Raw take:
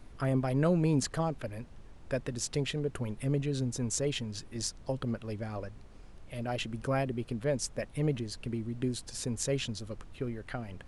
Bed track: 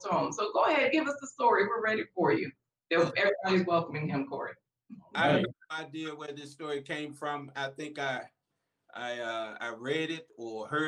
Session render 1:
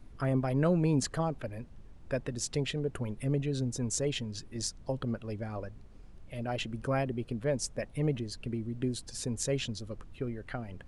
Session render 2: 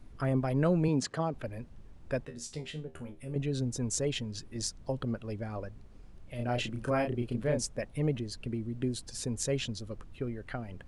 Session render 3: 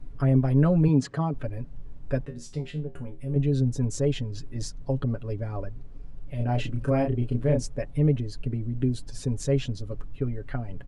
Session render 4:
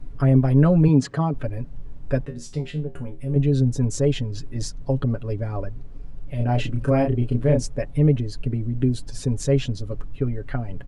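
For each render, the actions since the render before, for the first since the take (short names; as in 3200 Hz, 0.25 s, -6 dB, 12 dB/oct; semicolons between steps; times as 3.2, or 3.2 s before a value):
denoiser 6 dB, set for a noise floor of -52 dBFS
0.88–1.34 BPF 140–7000 Hz; 2.25–3.36 resonator 79 Hz, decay 0.24 s, mix 90%; 6.36–7.64 doubler 33 ms -3.5 dB
tilt -2 dB/oct; comb 7.1 ms
gain +4.5 dB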